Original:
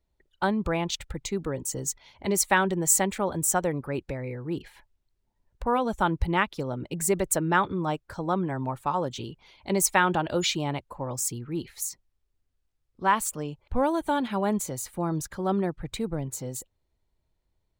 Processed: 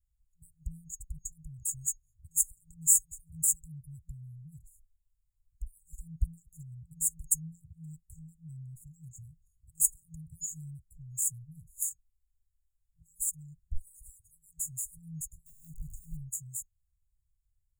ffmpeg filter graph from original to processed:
-filter_complex "[0:a]asettb=1/sr,asplit=3[s0][s1][s2];[s0]atrim=end=15.464[s3];[s1]atrim=start=15.46:end=16.17,asetpts=PTS-STARTPTS,afade=t=in:d=0.004:c=qsin,afade=t=out:st=0.706:d=0.004:c=qsin,aeval=exprs='val(0)+0.5*0.0126*sgn(val(0))':c=same,deesser=0.95[s4];[s2]atrim=start=16.166[s5];[s3][s4]acrossfade=d=0.004:c1=hsin:c2=qsin[s6];[s6][s5]acrossfade=d=0.004:c1=qsin:c2=hsin,equalizer=f=150:t=o:w=1.4:g=-10,afftfilt=real='re*(1-between(b*sr/4096,170,6600))':imag='im*(1-between(b*sr/4096,170,6600))':win_size=4096:overlap=0.75"

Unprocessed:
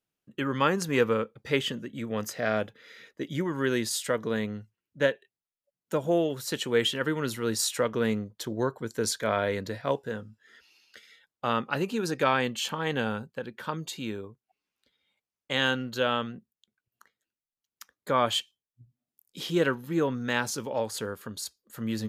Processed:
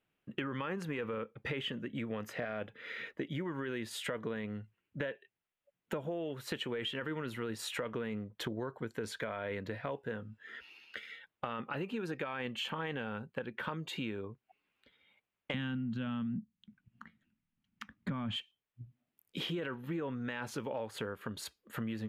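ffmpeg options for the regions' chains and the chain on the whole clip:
-filter_complex "[0:a]asettb=1/sr,asplit=3[s0][s1][s2];[s0]atrim=end=15.544[s3];[s1]atrim=start=15.54:end=18.36,asetpts=PTS-STARTPTS,afade=t=in:d=0.004:c=qsin,afade=t=out:st=2.816:d=0.004:c=qsin,lowshelf=f=310:t=q:w=3:g=13,adynamicsmooth=sensitivity=2:basefreq=6500[s4];[s2]atrim=start=18.356[s5];[s3][s4]acrossfade=d=0.004:c1=hsin:c2=qsin[s6];[s6][s5]acrossfade=d=0.004:c1=qsin:c2=hsin,highshelf=f=3800:t=q:w=1.5:g=-11.5,alimiter=limit=0.0944:level=0:latency=1:release=14,acompressor=threshold=0.00794:ratio=6,volume=2"

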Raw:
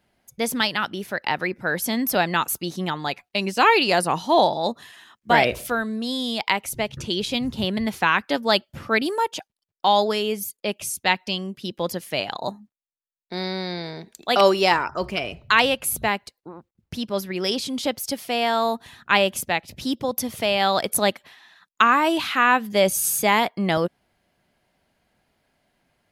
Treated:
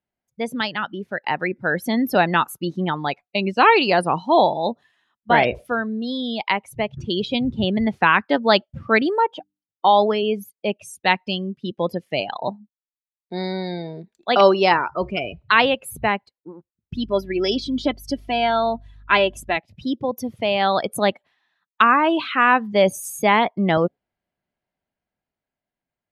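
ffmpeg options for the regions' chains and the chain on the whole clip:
-filter_complex "[0:a]asettb=1/sr,asplit=3[s0][s1][s2];[s0]atrim=end=9.234[s3];[s1]atrim=start=9.23:end=10.23,asetpts=PTS-STARTPTS,afade=t=in:d=0.004:c=qsin,afade=t=out:st=0.996:d=0.004:c=qsin,equalizer=f=6700:t=o:w=1.6:g=-5.5,bandreject=f=50:t=h:w=6,bandreject=f=100:t=h:w=6,bandreject=f=150:t=h:w=6,bandreject=f=200:t=h:w=6,bandreject=f=250:t=h:w=6,bandreject=f=300:t=h:w=6[s4];[s2]atrim=start=10.226[s5];[s3][s4]acrossfade=d=0.004:c1=hsin:c2=qsin[s6];[s6][s5]acrossfade=d=0.004:c1=qsin:c2=hsin,asettb=1/sr,asplit=3[s7][s8][s9];[s7]atrim=end=16.944[s10];[s8]atrim=start=16.94:end=19.57,asetpts=PTS-STARTPTS,afade=t=in:d=0.004:c=qsin,afade=t=out:st=2.626:d=0.004:c=qsin,adynamicequalizer=threshold=0.02:dfrequency=850:dqfactor=0.92:tfrequency=850:tqfactor=0.92:attack=5:release=100:ratio=0.375:range=2.5:mode=cutabove:tftype=bell,aecho=1:1:3:0.56,atrim=end_sample=115983,aeval=exprs='val(0)+0.00794*(sin(2*PI*50*n/s)+sin(2*PI*2*50*n/s)/2+sin(2*PI*3*50*n/s)/3+sin(2*PI*4*50*n/s)/4+sin(2*PI*5*50*n/s)/5)':c=same[s11];[s9]atrim=start=19.566[s12];[s10][s11]acrossfade=d=0.004:c1=hsin:c2=qsin[s13];[s13][s12]acrossfade=d=0.004:c1=qsin:c2=hsin,afftdn=nr=19:nf=-30,aemphasis=mode=reproduction:type=50fm,dynaudnorm=f=250:g=13:m=3.76,volume=0.891"

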